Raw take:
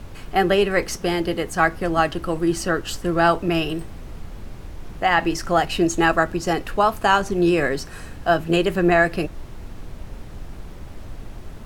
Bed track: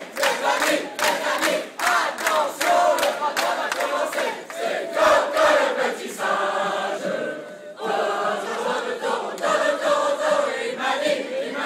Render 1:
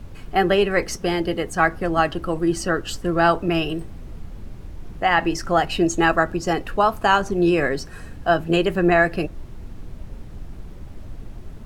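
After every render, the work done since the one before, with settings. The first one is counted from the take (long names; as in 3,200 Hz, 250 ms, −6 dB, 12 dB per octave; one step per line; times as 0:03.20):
broadband denoise 6 dB, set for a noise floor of −38 dBFS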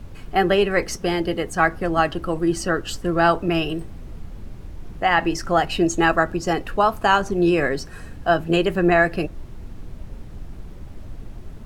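no processing that can be heard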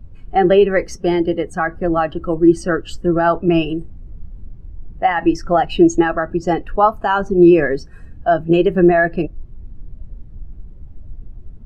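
boost into a limiter +9 dB
every bin expanded away from the loudest bin 1.5 to 1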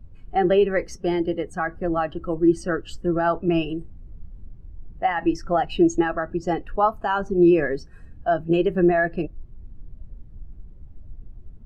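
level −6.5 dB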